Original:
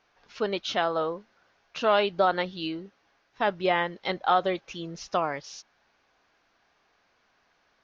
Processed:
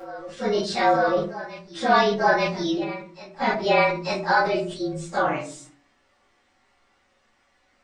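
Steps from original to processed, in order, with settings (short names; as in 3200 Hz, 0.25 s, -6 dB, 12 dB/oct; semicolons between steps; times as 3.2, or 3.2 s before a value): inharmonic rescaling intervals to 110%; notches 60/120/180/240/300/360 Hz; reverse echo 0.891 s -15.5 dB; reverb RT60 0.45 s, pre-delay 4 ms, DRR -10 dB; sustainer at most 100 dB/s; gain -3.5 dB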